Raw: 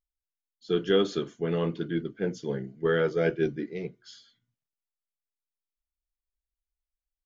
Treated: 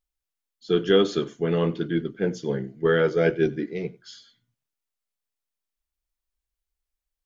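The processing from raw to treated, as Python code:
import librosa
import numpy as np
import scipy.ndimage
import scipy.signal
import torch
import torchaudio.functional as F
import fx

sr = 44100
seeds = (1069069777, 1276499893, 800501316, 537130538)

y = x + 10.0 ** (-23.0 / 20.0) * np.pad(x, (int(94 * sr / 1000.0), 0))[:len(x)]
y = y * 10.0 ** (4.5 / 20.0)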